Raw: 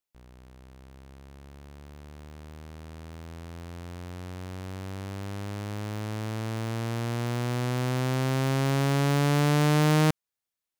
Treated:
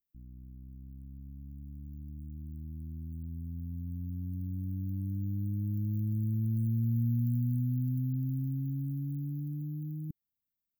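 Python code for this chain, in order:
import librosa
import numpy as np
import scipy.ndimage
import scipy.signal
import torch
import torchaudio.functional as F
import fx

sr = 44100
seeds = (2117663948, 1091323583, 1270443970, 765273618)

y = fx.peak_eq(x, sr, hz=520.0, db=-8.5, octaves=0.86)
y = fx.over_compress(y, sr, threshold_db=-31.0, ratio=-1.0)
y = fx.brickwall_bandstop(y, sr, low_hz=320.0, high_hz=13000.0)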